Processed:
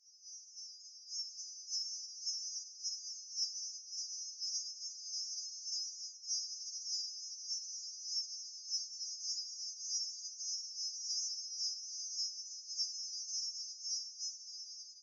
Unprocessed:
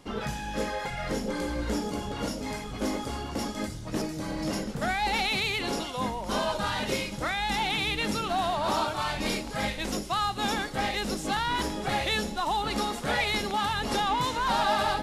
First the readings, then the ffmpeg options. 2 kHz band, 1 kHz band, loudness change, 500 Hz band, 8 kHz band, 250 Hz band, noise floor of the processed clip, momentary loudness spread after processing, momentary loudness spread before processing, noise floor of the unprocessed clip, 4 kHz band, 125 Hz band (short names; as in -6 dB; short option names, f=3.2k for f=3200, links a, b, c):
under -40 dB, under -40 dB, -10.5 dB, under -40 dB, +1.5 dB, under -40 dB, -55 dBFS, 7 LU, 7 LU, -37 dBFS, -7.0 dB, under -40 dB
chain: -af "afftfilt=real='re*lt(hypot(re,im),0.0562)':imag='im*lt(hypot(re,im),0.0562)':win_size=1024:overlap=0.75,dynaudnorm=f=230:g=11:m=10dB,flanger=delay=1.1:depth=9.4:regen=-73:speed=0.65:shape=triangular,afreqshift=-88,volume=29.5dB,asoftclip=hard,volume=-29.5dB,aeval=exprs='val(0)*sin(2*PI*53*n/s)':c=same,asuperpass=centerf=5700:order=12:qfactor=3.6,afftfilt=real='re*3.46*eq(mod(b,12),0)':imag='im*3.46*eq(mod(b,12),0)':win_size=2048:overlap=0.75,volume=8dB"